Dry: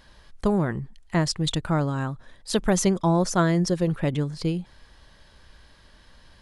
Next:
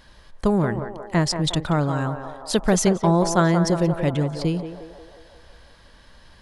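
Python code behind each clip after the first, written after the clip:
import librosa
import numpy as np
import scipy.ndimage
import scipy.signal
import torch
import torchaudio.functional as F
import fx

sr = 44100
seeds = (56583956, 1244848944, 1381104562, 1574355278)

y = fx.echo_banded(x, sr, ms=179, feedback_pct=68, hz=720.0, wet_db=-6)
y = y * 10.0 ** (2.5 / 20.0)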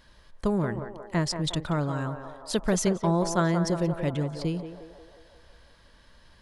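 y = fx.notch(x, sr, hz=780.0, q=13.0)
y = y * 10.0 ** (-6.0 / 20.0)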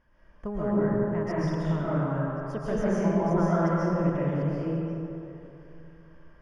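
y = np.convolve(x, np.full(11, 1.0 / 11))[:len(x)]
y = y + 10.0 ** (-22.5 / 20.0) * np.pad(y, (int(1087 * sr / 1000.0), 0))[:len(y)]
y = fx.rev_freeverb(y, sr, rt60_s=2.3, hf_ratio=0.65, predelay_ms=95, drr_db=-9.0)
y = y * 10.0 ** (-8.5 / 20.0)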